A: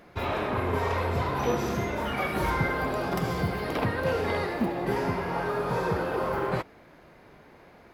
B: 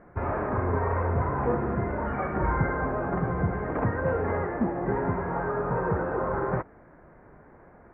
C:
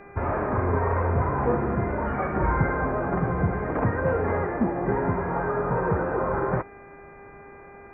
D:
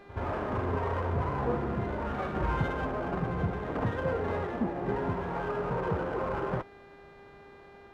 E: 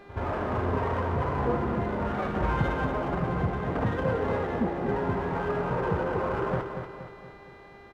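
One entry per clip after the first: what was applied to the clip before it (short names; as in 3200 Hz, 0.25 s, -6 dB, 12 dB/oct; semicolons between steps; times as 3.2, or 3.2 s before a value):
steep low-pass 1800 Hz 36 dB/oct; low shelf 88 Hz +7 dB
buzz 400 Hz, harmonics 6, -50 dBFS -4 dB/oct; gain +2.5 dB
pre-echo 73 ms -14 dB; running maximum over 5 samples; gain -6.5 dB
feedback echo 0.236 s, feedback 48%, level -7.5 dB; gain +2.5 dB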